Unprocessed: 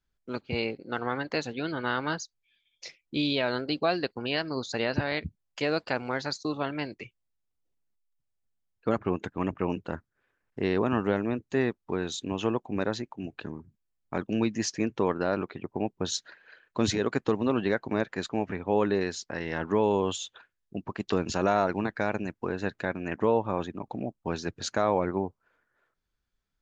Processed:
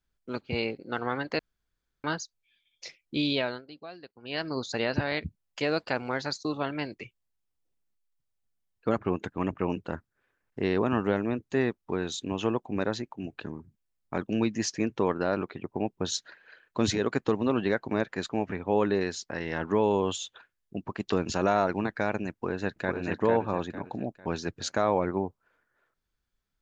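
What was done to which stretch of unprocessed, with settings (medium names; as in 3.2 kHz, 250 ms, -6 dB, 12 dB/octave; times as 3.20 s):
1.39–2.04 s: room tone
3.39–4.45 s: dip -17.5 dB, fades 0.23 s
22.31–22.99 s: echo throw 450 ms, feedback 35%, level -4 dB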